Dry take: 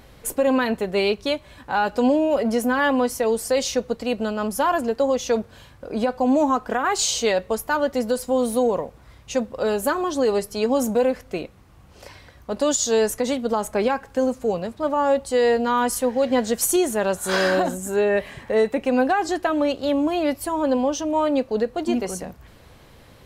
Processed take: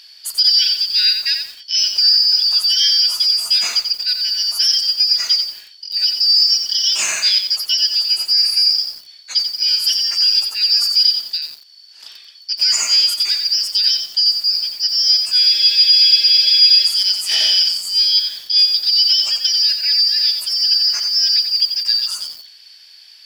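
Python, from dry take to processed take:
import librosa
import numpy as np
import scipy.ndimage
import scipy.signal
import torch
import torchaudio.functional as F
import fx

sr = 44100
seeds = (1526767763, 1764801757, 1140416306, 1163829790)

y = fx.band_shuffle(x, sr, order='4321')
y = fx.highpass(y, sr, hz=1300.0, slope=6)
y = fx.peak_eq(y, sr, hz=3100.0, db=5.0, octaves=2.0)
y = fx.spec_freeze(y, sr, seeds[0], at_s=15.46, hold_s=1.39)
y = fx.echo_crushed(y, sr, ms=89, feedback_pct=35, bits=6, wet_db=-6.5)
y = y * librosa.db_to_amplitude(1.5)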